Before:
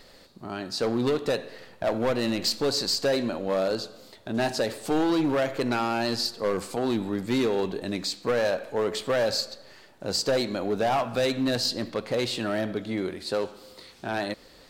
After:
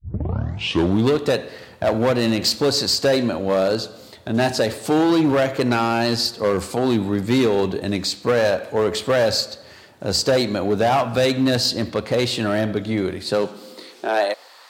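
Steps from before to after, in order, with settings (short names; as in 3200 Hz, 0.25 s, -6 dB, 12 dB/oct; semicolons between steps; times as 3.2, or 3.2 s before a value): tape start at the beginning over 1.10 s; high-pass sweep 80 Hz -> 990 Hz, 13.09–14.58; gain +6.5 dB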